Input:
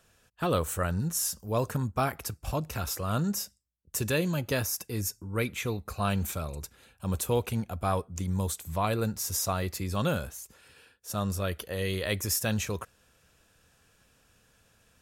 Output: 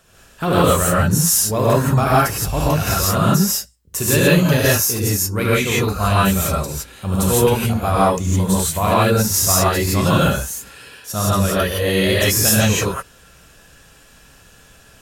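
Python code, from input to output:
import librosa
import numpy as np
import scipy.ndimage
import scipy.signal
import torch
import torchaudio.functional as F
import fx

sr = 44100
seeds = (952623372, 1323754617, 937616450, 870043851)

p1 = 10.0 ** (-32.0 / 20.0) * np.tanh(x / 10.0 ** (-32.0 / 20.0))
p2 = x + (p1 * librosa.db_to_amplitude(-6.0))
p3 = fx.rev_gated(p2, sr, seeds[0], gate_ms=190, shape='rising', drr_db=-7.5)
y = p3 * librosa.db_to_amplitude(5.0)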